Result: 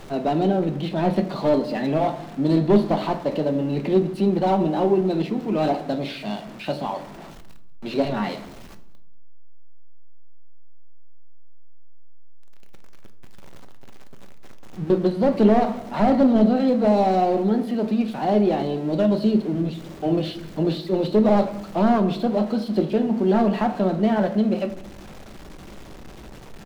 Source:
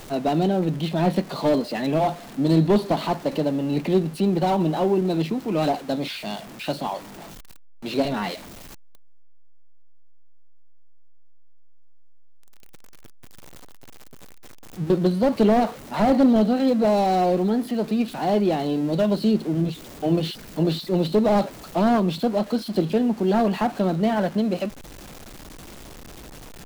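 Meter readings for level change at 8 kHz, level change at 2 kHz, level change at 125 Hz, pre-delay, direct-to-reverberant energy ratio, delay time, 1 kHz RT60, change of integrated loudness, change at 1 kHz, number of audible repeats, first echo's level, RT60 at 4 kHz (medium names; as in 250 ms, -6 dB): no reading, -1.0 dB, -0.5 dB, 5 ms, 8.0 dB, 189 ms, 0.65 s, +1.0 dB, +0.5 dB, 1, -23.5 dB, 0.50 s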